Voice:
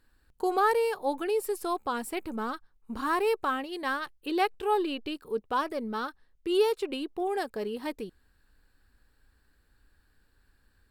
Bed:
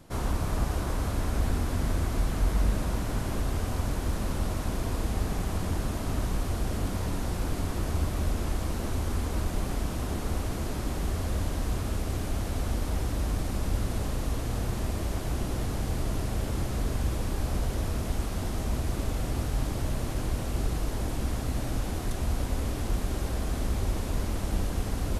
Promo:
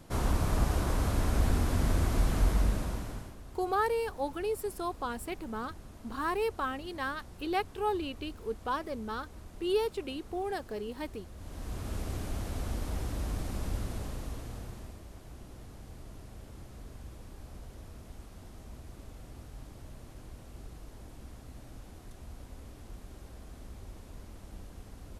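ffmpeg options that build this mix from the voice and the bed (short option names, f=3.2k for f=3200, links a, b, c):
-filter_complex "[0:a]adelay=3150,volume=-4.5dB[a];[1:a]volume=13.5dB,afade=t=out:st=2.4:d=0.95:silence=0.112202,afade=t=in:st=11.36:d=0.63:silence=0.211349,afade=t=out:st=13.65:d=1.37:silence=0.237137[b];[a][b]amix=inputs=2:normalize=0"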